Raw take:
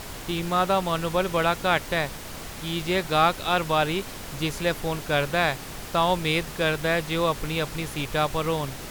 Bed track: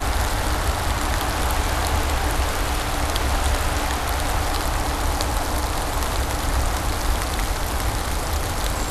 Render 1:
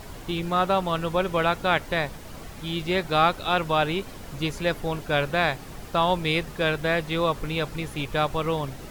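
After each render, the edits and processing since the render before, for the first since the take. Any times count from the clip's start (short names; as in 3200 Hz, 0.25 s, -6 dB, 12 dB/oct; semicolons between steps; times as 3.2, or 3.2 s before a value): denoiser 8 dB, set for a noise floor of -38 dBFS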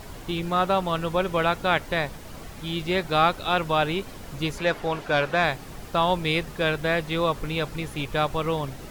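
4.58–5.44 overdrive pedal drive 11 dB, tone 2500 Hz, clips at -10 dBFS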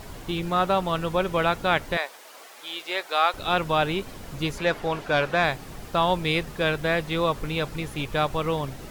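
1.97–3.34 Bessel high-pass 640 Hz, order 4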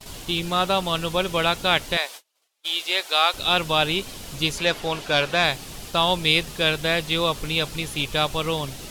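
gate -41 dBFS, range -36 dB; band shelf 5800 Hz +10 dB 2.6 oct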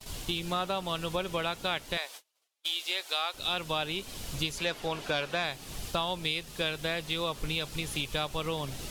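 compressor 5:1, threshold -29 dBFS, peak gain reduction 14 dB; three-band expander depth 40%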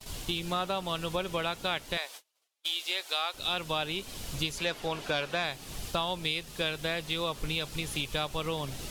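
nothing audible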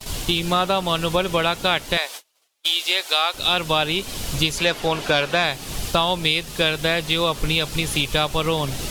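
gain +11.5 dB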